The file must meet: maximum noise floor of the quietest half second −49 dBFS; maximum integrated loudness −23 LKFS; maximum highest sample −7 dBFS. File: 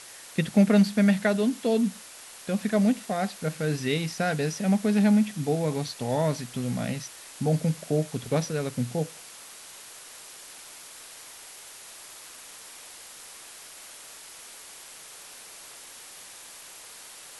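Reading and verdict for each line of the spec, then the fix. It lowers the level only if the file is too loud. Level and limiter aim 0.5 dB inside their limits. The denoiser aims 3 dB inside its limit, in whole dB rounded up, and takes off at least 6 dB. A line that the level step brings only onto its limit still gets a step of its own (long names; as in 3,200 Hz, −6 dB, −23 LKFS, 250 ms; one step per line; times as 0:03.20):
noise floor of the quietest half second −46 dBFS: out of spec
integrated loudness −26.0 LKFS: in spec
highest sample −10.5 dBFS: in spec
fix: broadband denoise 6 dB, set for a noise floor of −46 dBFS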